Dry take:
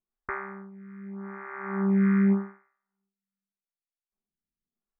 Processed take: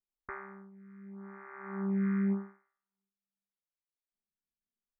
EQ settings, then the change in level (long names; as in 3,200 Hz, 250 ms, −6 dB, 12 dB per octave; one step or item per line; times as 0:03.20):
high-frequency loss of the air 200 metres
−8.0 dB